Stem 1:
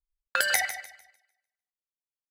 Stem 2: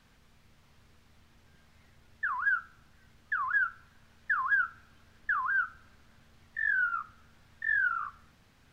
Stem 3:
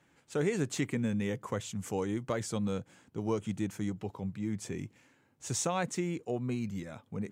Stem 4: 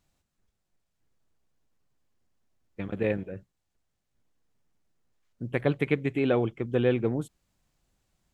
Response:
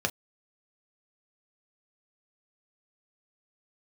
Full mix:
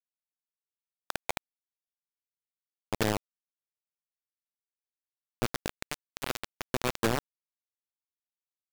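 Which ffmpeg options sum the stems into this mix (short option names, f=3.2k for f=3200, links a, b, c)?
-filter_complex "[0:a]highpass=440,lowpass=f=830:t=q:w=4.9,adelay=750,volume=-2.5dB[a];[1:a]highpass=f=1k:w=0.5412,highpass=f=1k:w=1.3066,adelay=2050,volume=-4dB,asplit=2[b][c];[c]volume=-10.5dB[d];[2:a]volume=-4.5dB,asplit=3[e][f][g];[f]volume=-7dB[h];[3:a]acompressor=threshold=-26dB:ratio=8,bandreject=f=62.98:t=h:w=4,bandreject=f=125.96:t=h:w=4,bandreject=f=188.94:t=h:w=4,dynaudnorm=f=330:g=7:m=9dB,volume=-4dB[i];[g]apad=whole_len=367623[j];[i][j]sidechaincompress=threshold=-42dB:ratio=12:attack=41:release=491[k];[d][h]amix=inputs=2:normalize=0,aecho=0:1:1072:1[l];[a][b][e][k][l]amix=inputs=5:normalize=0,acrossover=split=470[m][n];[n]acompressor=threshold=-39dB:ratio=2[o];[m][o]amix=inputs=2:normalize=0,acrusher=bits=3:mix=0:aa=0.000001"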